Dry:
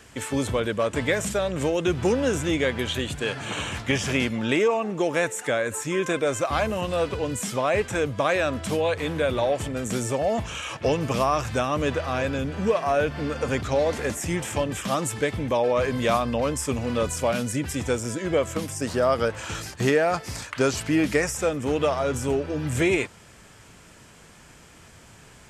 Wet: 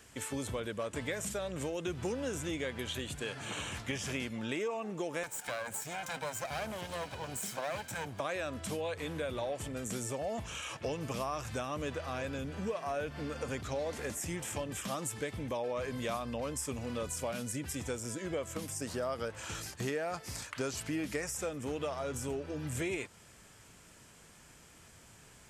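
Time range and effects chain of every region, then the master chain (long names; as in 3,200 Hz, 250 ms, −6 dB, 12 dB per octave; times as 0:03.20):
0:05.23–0:08.20: lower of the sound and its delayed copy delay 1.3 ms + high-pass filter 97 Hz
whole clip: high-shelf EQ 6,600 Hz +7.5 dB; downward compressor 2 to 1, threshold −27 dBFS; level −9 dB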